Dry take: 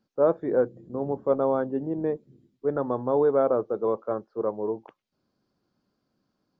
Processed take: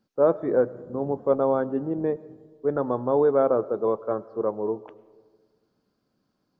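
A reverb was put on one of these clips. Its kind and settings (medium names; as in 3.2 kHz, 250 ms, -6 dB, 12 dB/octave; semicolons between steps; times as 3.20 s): algorithmic reverb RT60 1.6 s, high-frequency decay 0.35×, pre-delay 60 ms, DRR 19.5 dB; trim +1.5 dB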